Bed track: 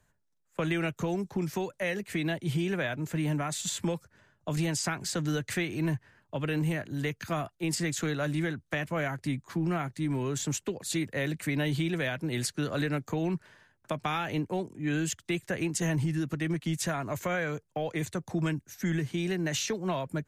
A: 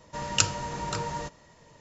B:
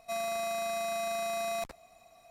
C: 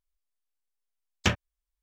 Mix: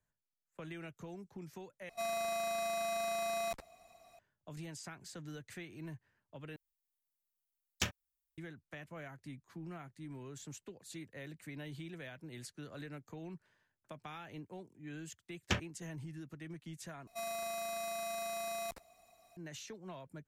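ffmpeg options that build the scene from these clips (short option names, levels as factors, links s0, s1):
-filter_complex "[2:a]asplit=2[s0][s1];[3:a]asplit=2[s2][s3];[0:a]volume=0.141[s4];[s2]aemphasis=mode=production:type=75fm[s5];[s1]highshelf=f=7400:g=7.5[s6];[s4]asplit=4[s7][s8][s9][s10];[s7]atrim=end=1.894[s11];[s0]atrim=end=2.3,asetpts=PTS-STARTPTS,volume=0.708[s12];[s8]atrim=start=4.186:end=6.564[s13];[s5]atrim=end=1.82,asetpts=PTS-STARTPTS,volume=0.224[s14];[s9]atrim=start=8.376:end=17.074[s15];[s6]atrim=end=2.3,asetpts=PTS-STARTPTS,volume=0.447[s16];[s10]atrim=start=19.366[s17];[s3]atrim=end=1.82,asetpts=PTS-STARTPTS,volume=0.355,afade=t=in:d=0.004:c=hsin,afade=t=out:st=1.816:d=0.004:c=hsin,adelay=14250[s18];[s11][s12]acrossfade=d=0.004:c1=hsin:c2=hsin[s19];[s19][s13]acrossfade=d=0.004:c1=hsin:c2=hsin[s20];[s20][s14]acrossfade=d=0.004:c1=hsin:c2=hsin[s21];[s21][s15]acrossfade=d=0.004:c1=hsin:c2=hsin[s22];[s22][s16]acrossfade=d=0.004:c1=hsin:c2=hsin[s23];[s23][s17]acrossfade=d=0.004:c1=hsin:c2=hsin[s24];[s24][s18]amix=inputs=2:normalize=0"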